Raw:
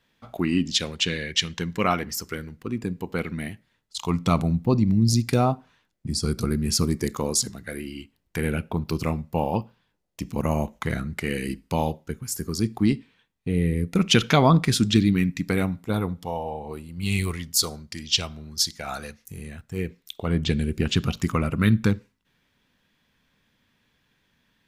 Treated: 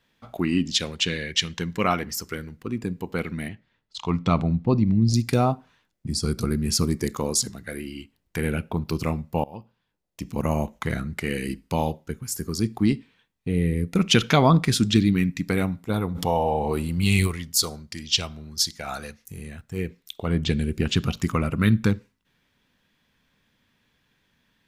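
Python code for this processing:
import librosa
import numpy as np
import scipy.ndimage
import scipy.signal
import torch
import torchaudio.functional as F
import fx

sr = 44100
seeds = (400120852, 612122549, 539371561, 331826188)

y = fx.lowpass(x, sr, hz=4100.0, slope=12, at=(3.48, 5.14))
y = fx.env_flatten(y, sr, amount_pct=50, at=(16.14, 17.26), fade=0.02)
y = fx.edit(y, sr, fx.fade_in_from(start_s=9.44, length_s=0.98, floor_db=-21.0), tone=tone)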